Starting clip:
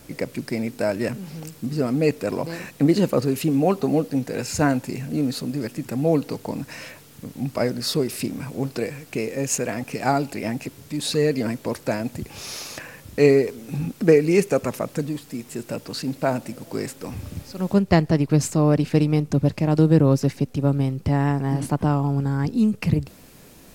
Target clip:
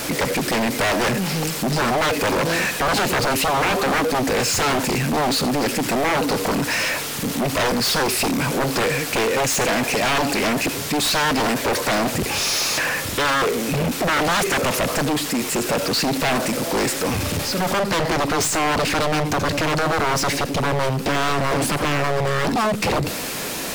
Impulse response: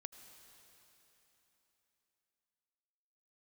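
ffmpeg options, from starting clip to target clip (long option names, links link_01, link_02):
-filter_complex "[0:a]alimiter=limit=-12dB:level=0:latency=1:release=10[link_01];[1:a]atrim=start_sample=2205,atrim=end_sample=4410[link_02];[link_01][link_02]afir=irnorm=-1:irlink=0,aeval=exprs='0.15*sin(PI/2*5.01*val(0)/0.15)':channel_layout=same,asplit=2[link_03][link_04];[link_04]highpass=frequency=720:poles=1,volume=22dB,asoftclip=type=tanh:threshold=-16dB[link_05];[link_03][link_05]amix=inputs=2:normalize=0,lowpass=frequency=7500:poles=1,volume=-6dB"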